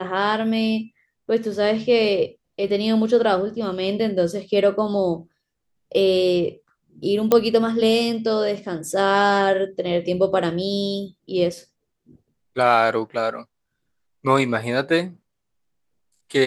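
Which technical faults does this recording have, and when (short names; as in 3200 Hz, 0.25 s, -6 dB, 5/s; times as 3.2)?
7.32 pop -4 dBFS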